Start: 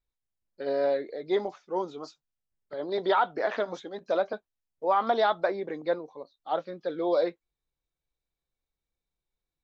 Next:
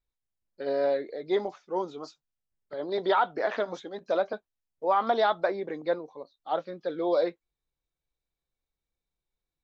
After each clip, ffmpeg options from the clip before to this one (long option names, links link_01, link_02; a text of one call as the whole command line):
ffmpeg -i in.wav -af anull out.wav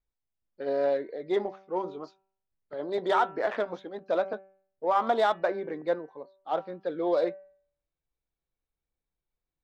ffmpeg -i in.wav -af "adynamicsmooth=sensitivity=3:basefreq=3000,bandreject=frequency=192.4:width_type=h:width=4,bandreject=frequency=384.8:width_type=h:width=4,bandreject=frequency=577.2:width_type=h:width=4,bandreject=frequency=769.6:width_type=h:width=4,bandreject=frequency=962:width_type=h:width=4,bandreject=frequency=1154.4:width_type=h:width=4,bandreject=frequency=1346.8:width_type=h:width=4,bandreject=frequency=1539.2:width_type=h:width=4,bandreject=frequency=1731.6:width_type=h:width=4,bandreject=frequency=1924:width_type=h:width=4,bandreject=frequency=2116.4:width_type=h:width=4,bandreject=frequency=2308.8:width_type=h:width=4,bandreject=frequency=2501.2:width_type=h:width=4,bandreject=frequency=2693.6:width_type=h:width=4,bandreject=frequency=2886:width_type=h:width=4" out.wav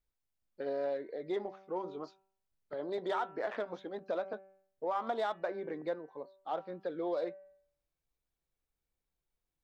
ffmpeg -i in.wav -af "acompressor=threshold=-39dB:ratio=2" out.wav